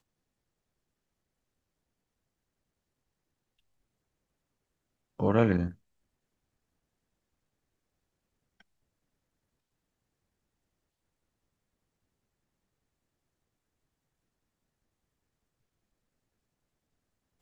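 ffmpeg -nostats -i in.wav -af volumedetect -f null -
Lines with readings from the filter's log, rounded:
mean_volume: -40.4 dB
max_volume: -10.6 dB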